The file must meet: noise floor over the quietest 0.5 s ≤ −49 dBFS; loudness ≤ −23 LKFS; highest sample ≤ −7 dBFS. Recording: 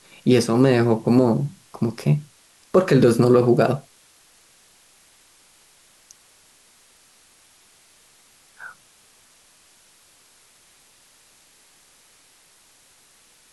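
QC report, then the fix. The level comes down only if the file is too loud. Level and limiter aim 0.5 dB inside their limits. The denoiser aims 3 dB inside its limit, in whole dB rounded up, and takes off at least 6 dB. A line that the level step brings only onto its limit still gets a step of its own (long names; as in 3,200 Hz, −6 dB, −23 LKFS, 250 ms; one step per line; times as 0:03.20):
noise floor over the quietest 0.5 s −55 dBFS: in spec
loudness −19.0 LKFS: out of spec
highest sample −5.5 dBFS: out of spec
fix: level −4.5 dB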